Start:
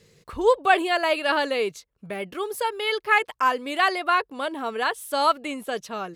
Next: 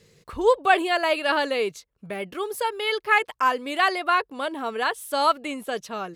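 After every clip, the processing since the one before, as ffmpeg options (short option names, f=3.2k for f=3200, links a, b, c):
-af anull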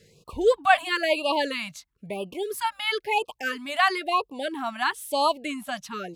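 -af "afftfilt=real='re*(1-between(b*sr/1024,380*pow(1800/380,0.5+0.5*sin(2*PI*1*pts/sr))/1.41,380*pow(1800/380,0.5+0.5*sin(2*PI*1*pts/sr))*1.41))':imag='im*(1-between(b*sr/1024,380*pow(1800/380,0.5+0.5*sin(2*PI*1*pts/sr))/1.41,380*pow(1800/380,0.5+0.5*sin(2*PI*1*pts/sr))*1.41))':win_size=1024:overlap=0.75"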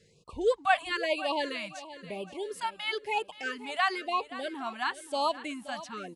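-af "aecho=1:1:525|1050|1575|2100:0.178|0.0711|0.0285|0.0114,aresample=22050,aresample=44100,volume=-6dB"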